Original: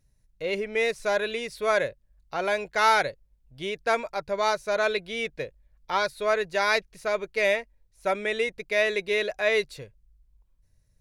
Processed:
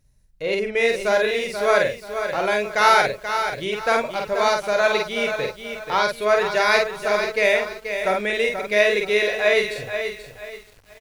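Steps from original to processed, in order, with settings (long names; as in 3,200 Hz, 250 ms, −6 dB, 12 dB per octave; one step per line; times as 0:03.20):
double-tracking delay 48 ms −3.5 dB
feedback echo at a low word length 482 ms, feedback 35%, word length 8 bits, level −8 dB
level +4 dB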